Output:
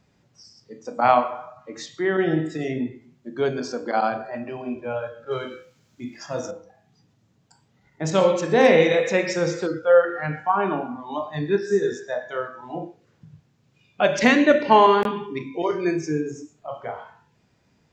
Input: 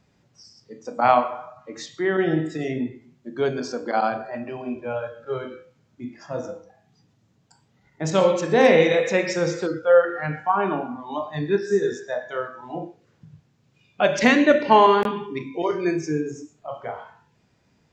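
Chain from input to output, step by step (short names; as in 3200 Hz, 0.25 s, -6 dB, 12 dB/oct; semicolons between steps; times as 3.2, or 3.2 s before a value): 5.31–6.51 high shelf 2400 Hz +12 dB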